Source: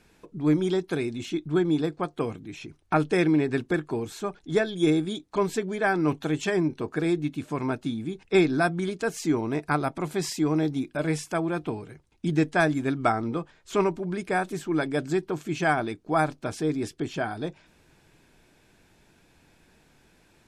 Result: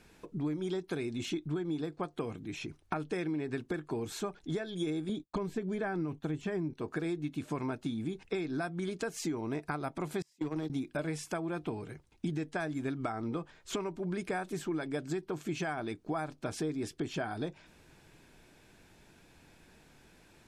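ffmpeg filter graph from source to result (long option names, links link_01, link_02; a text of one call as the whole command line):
ffmpeg -i in.wav -filter_complex "[0:a]asettb=1/sr,asplit=3[link_01][link_02][link_03];[link_01]atrim=end=5.094[link_04];[link_02]atrim=start=5.09:end=6.74,asetpts=PTS-STARTPTS,afade=type=in:duration=0.004:curve=qsin,afade=type=out:start_time=1.646:duration=0.004:curve=qsin,acrossover=split=2500[link_05][link_06];[link_06]acompressor=threshold=-44dB:ratio=4:attack=1:release=60[link_07];[link_05][link_07]amix=inputs=2:normalize=0,agate=range=-33dB:threshold=-41dB:ratio=3:release=100:detection=peak,lowshelf=frequency=260:gain=10[link_08];[link_03]atrim=start=6.736[link_09];[link_04][link_08]acrossfade=duration=0.004:curve1=hsin:curve2=qsin[link_10];[link_10][link_09]acrossfade=duration=0.004:curve1=qsin:curve2=hsin,asettb=1/sr,asplit=3[link_11][link_12][link_13];[link_11]atrim=end=10.224[link_14];[link_12]atrim=start=10.22:end=10.7,asetpts=PTS-STARTPTS,afade=type=in:duration=0.004:curve=qsin,afade=type=out:start_time=0.476:duration=0.004:curve=qsin,agate=range=-33dB:threshold=-24dB:ratio=16:release=100:detection=peak,acrossover=split=140|3000[link_15][link_16][link_17];[link_16]acompressor=threshold=-27dB:ratio=2.5:attack=3.2:release=140:knee=2.83:detection=peak[link_18];[link_15][link_18][link_17]amix=inputs=3:normalize=0,asoftclip=type=hard:threshold=-23.5dB[link_19];[link_13]atrim=start=10.696[link_20];[link_14][link_19]acrossfade=duration=0.004:curve1=hsin:curve2=qsin[link_21];[link_21][link_20]acrossfade=duration=0.004:curve1=qsin:curve2=hsin,alimiter=limit=-17dB:level=0:latency=1:release=424,acompressor=threshold=-32dB:ratio=5" out.wav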